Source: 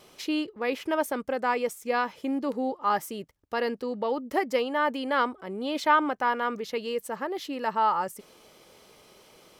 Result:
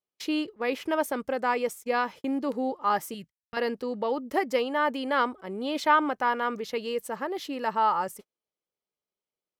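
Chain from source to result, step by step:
noise gate −41 dBFS, range −41 dB
0:03.14–0:03.57: flat-topped bell 580 Hz −12 dB 2.3 octaves

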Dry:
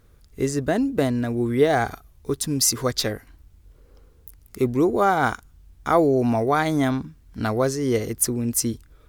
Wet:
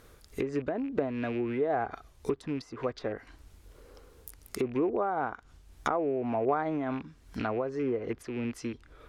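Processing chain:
loose part that buzzes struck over −29 dBFS, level −28 dBFS
downward compressor 5 to 1, threshold −32 dBFS, peak gain reduction 17.5 dB
bass and treble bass −10 dB, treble 0 dB, from 0:07.82 treble −9 dB
treble cut that deepens with the level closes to 1,200 Hz, closed at −32 dBFS
amplitude modulation by smooth noise, depth 50%
level +8.5 dB

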